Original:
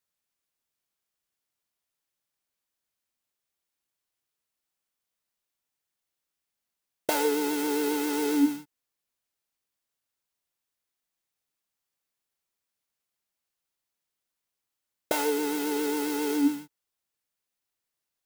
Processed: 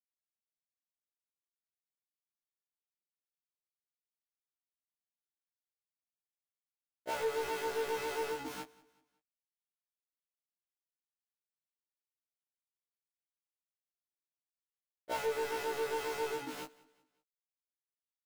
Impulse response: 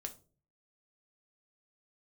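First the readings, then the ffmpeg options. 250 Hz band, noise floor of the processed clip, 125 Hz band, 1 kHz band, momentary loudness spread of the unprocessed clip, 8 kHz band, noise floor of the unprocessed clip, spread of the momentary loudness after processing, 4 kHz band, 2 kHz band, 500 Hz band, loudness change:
-23.0 dB, under -85 dBFS, no reading, -5.0 dB, 5 LU, -12.5 dB, under -85 dBFS, 12 LU, -8.0 dB, -5.5 dB, -6.0 dB, -9.5 dB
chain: -filter_complex "[0:a]equalizer=f=570:w=3.3:g=5,areverse,acompressor=threshold=0.02:ratio=8,areverse,aeval=exprs='val(0)*gte(abs(val(0)),0.00473)':c=same,asplit=2[s0][s1];[s1]highpass=f=720:p=1,volume=17.8,asoftclip=type=tanh:threshold=0.0562[s2];[s0][s2]amix=inputs=2:normalize=0,lowpass=f=2100:p=1,volume=0.501,aecho=1:1:187|374|561:0.0708|0.029|0.0119,afftfilt=real='re*1.73*eq(mod(b,3),0)':imag='im*1.73*eq(mod(b,3),0)':win_size=2048:overlap=0.75"

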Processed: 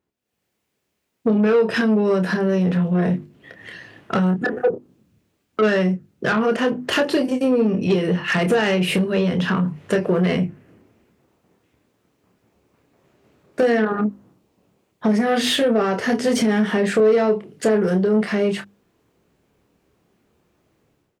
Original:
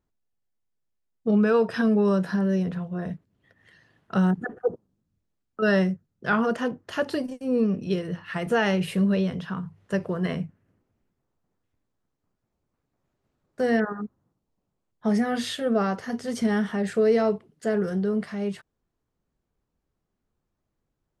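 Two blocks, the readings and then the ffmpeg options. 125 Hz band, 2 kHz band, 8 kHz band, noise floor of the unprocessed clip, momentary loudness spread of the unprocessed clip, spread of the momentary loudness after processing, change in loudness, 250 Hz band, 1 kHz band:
+6.0 dB, +6.5 dB, +10.0 dB, -80 dBFS, 11 LU, 7 LU, +6.0 dB, +5.0 dB, +5.5 dB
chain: -filter_complex "[0:a]acompressor=threshold=0.0282:ratio=8,equalizer=f=2500:w=1.6:g=6,bandreject=f=50:t=h:w=6,bandreject=f=100:t=h:w=6,bandreject=f=150:t=h:w=6,bandreject=f=200:t=h:w=6,bandreject=f=250:t=h:w=6,bandreject=f=300:t=h:w=6,bandreject=f=350:t=h:w=6,asplit=2[s0][s1];[s1]adelay=28,volume=0.447[s2];[s0][s2]amix=inputs=2:normalize=0,dynaudnorm=f=120:g=5:m=5.62,asoftclip=type=tanh:threshold=0.178,highpass=78,equalizer=f=370:w=0.96:g=5.5"

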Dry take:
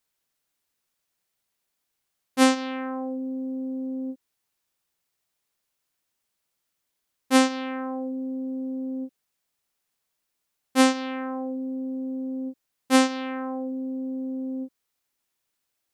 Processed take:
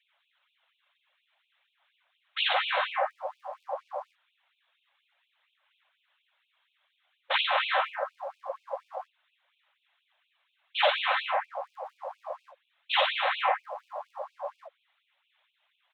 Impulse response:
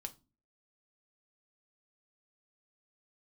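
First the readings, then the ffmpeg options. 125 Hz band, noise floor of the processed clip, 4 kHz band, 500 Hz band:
no reading, -77 dBFS, +3.5 dB, -3.5 dB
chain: -af "aresample=8000,aeval=exprs='0.398*sin(PI/2*7.08*val(0)/0.398)':c=same,aresample=44100,afftfilt=real='hypot(re,im)*cos(2*PI*random(0))':imag='hypot(re,im)*sin(2*PI*random(1))':win_size=512:overlap=0.75,aeval=exprs='val(0)+0.00251*(sin(2*PI*50*n/s)+sin(2*PI*2*50*n/s)/2+sin(2*PI*3*50*n/s)/3+sin(2*PI*4*50*n/s)/4+sin(2*PI*5*50*n/s)/5)':c=same,aphaser=in_gain=1:out_gain=1:delay=1.9:decay=0.23:speed=0.52:type=sinusoidal,afftfilt=real='re*gte(b*sr/1024,510*pow(2400/510,0.5+0.5*sin(2*PI*4.2*pts/sr)))':imag='im*gte(b*sr/1024,510*pow(2400/510,0.5+0.5*sin(2*PI*4.2*pts/sr)))':win_size=1024:overlap=0.75"

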